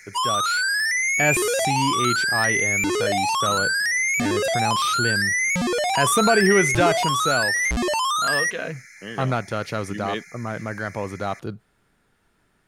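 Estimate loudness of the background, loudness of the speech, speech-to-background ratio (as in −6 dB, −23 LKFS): −21.0 LKFS, −26.0 LKFS, −5.0 dB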